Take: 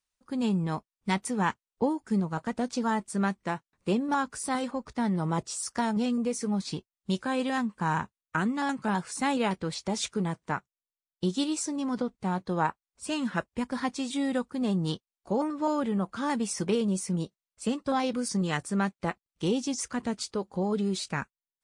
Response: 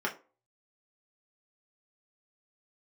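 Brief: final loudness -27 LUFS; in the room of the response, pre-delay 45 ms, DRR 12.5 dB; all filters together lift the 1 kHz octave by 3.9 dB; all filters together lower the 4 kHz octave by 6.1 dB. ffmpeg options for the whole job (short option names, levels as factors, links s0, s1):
-filter_complex "[0:a]equalizer=f=1000:t=o:g=5,equalizer=f=4000:t=o:g=-8.5,asplit=2[s0][s1];[1:a]atrim=start_sample=2205,adelay=45[s2];[s1][s2]afir=irnorm=-1:irlink=0,volume=0.1[s3];[s0][s3]amix=inputs=2:normalize=0,volume=1.33"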